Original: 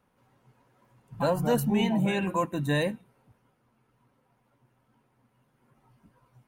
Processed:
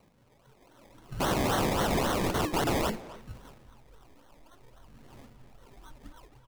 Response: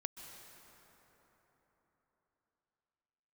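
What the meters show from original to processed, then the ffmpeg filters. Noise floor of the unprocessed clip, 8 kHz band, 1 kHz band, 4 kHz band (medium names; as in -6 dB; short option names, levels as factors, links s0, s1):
-71 dBFS, +6.5 dB, +2.5 dB, +3.0 dB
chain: -filter_complex "[0:a]highshelf=f=4900:g=-11,bandreject=f=60:t=h:w=6,bandreject=f=120:t=h:w=6,bandreject=f=180:t=h:w=6,bandreject=f=240:t=h:w=6,bandreject=f=300:t=h:w=6,bandreject=f=360:t=h:w=6,bandreject=f=420:t=h:w=6,asplit=2[s0][s1];[s1]acompressor=threshold=0.0141:ratio=6,volume=1.12[s2];[s0][s2]amix=inputs=2:normalize=0,asubboost=boost=6.5:cutoff=58,dynaudnorm=f=290:g=5:m=3.16,alimiter=limit=0.237:level=0:latency=1:release=18,aphaser=in_gain=1:out_gain=1:delay=3.4:decay=0.62:speed=0.58:type=sinusoidal,acrusher=samples=25:mix=1:aa=0.000001:lfo=1:lforange=15:lforate=3.7,aeval=exprs='(mod(7.08*val(0)+1,2)-1)/7.08':c=same,asplit=2[s3][s4];[s4]adelay=260,highpass=300,lowpass=3400,asoftclip=type=hard:threshold=0.0473,volume=0.282[s5];[s3][s5]amix=inputs=2:normalize=0,volume=0.531"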